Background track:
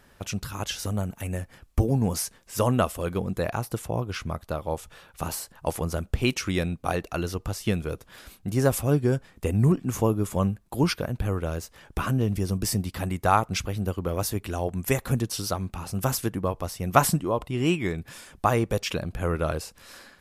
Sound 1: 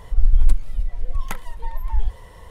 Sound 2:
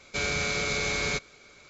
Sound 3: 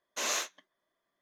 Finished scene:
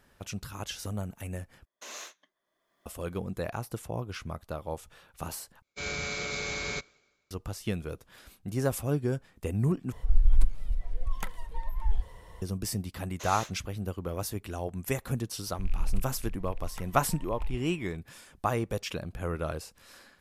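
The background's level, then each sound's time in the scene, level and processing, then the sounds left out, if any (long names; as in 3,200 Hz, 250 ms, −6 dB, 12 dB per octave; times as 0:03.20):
background track −6.5 dB
0:01.65: overwrite with 3 −11 dB + camcorder AGC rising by 28 dB per second
0:05.62: overwrite with 2 −5.5 dB + multiband upward and downward expander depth 100%
0:09.92: overwrite with 1 −6.5 dB
0:13.03: mix in 3 −8 dB
0:15.47: mix in 1 −14.5 dB + loose part that buzzes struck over −28 dBFS, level −25 dBFS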